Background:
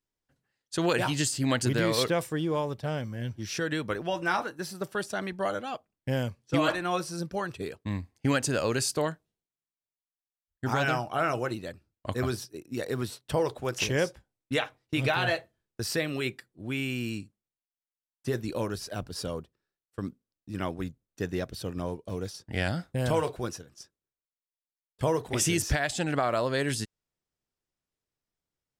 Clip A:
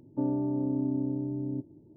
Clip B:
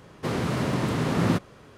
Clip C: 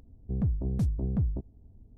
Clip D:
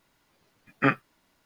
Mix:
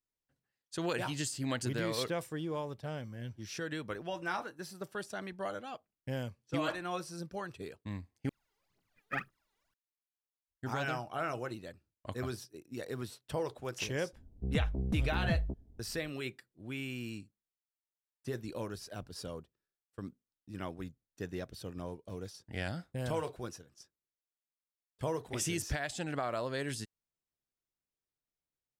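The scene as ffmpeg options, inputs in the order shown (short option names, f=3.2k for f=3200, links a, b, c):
-filter_complex "[0:a]volume=-8.5dB[a];[4:a]aphaser=in_gain=1:out_gain=1:delay=2.6:decay=0.79:speed=2:type=triangular[b];[3:a]equalizer=f=110:t=o:w=0.31:g=-7[c];[a]asplit=2[d][e];[d]atrim=end=8.294[f];[b]atrim=end=1.45,asetpts=PTS-STARTPTS,volume=-17dB[g];[e]atrim=start=9.736[h];[c]atrim=end=1.97,asetpts=PTS-STARTPTS,volume=-3.5dB,afade=t=in:d=0.004:c=hsin,afade=t=out:st=1.966:d=0.004:c=hsin,adelay=14130[i];[f][g]acrossfade=d=0.004:c1=hsin:c2=hsin[j];[j][h]acrossfade=d=0.004:c1=hsin:c2=hsin[k];[k][i]amix=inputs=2:normalize=0"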